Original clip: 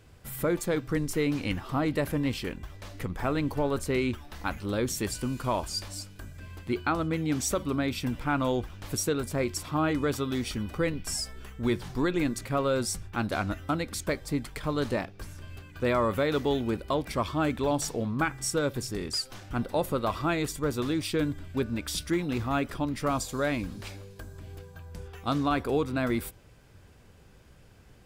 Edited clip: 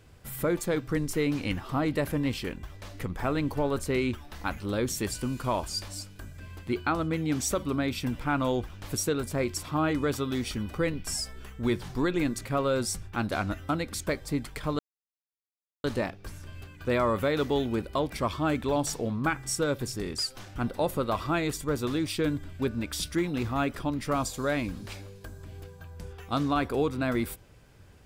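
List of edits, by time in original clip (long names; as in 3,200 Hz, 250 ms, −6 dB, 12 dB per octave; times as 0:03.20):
0:14.79: splice in silence 1.05 s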